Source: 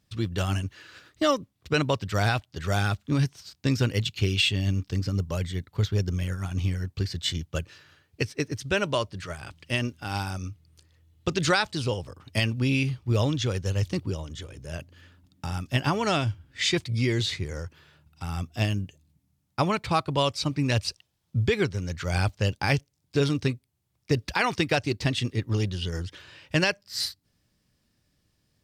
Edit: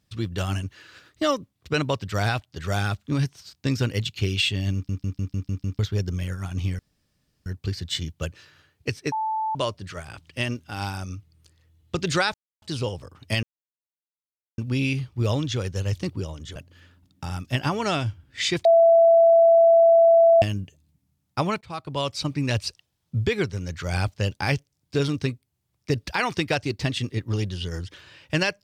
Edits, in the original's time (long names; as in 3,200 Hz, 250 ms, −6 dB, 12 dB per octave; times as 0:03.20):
0:04.74: stutter in place 0.15 s, 7 plays
0:06.79: splice in room tone 0.67 s
0:08.45–0:08.88: beep over 876 Hz −23 dBFS
0:11.67: splice in silence 0.28 s
0:12.48: splice in silence 1.15 s
0:14.46–0:14.77: remove
0:16.86–0:18.63: beep over 667 Hz −11.5 dBFS
0:19.82–0:20.40: fade in, from −19 dB